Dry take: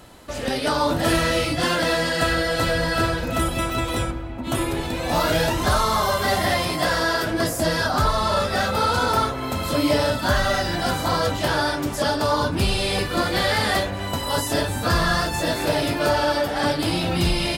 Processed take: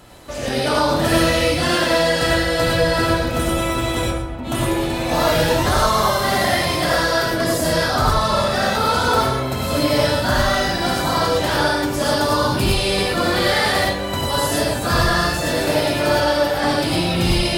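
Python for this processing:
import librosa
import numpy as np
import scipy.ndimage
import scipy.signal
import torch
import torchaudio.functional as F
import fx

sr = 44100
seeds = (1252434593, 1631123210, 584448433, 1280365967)

y = fx.high_shelf(x, sr, hz=9900.0, db=6.5, at=(12.0, 12.64))
y = y + 10.0 ** (-16.0 / 20.0) * np.pad(y, (int(136 * sr / 1000.0), 0))[:len(y)]
y = fx.rev_gated(y, sr, seeds[0], gate_ms=130, shape='rising', drr_db=-1.0)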